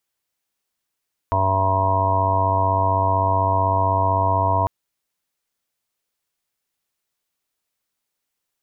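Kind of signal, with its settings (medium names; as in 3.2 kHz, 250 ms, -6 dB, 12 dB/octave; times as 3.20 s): steady additive tone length 3.35 s, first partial 95.8 Hz, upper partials -19/-11/-18/-12/-12.5/-1.5/-17.5/-13/2/-5 dB, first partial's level -21.5 dB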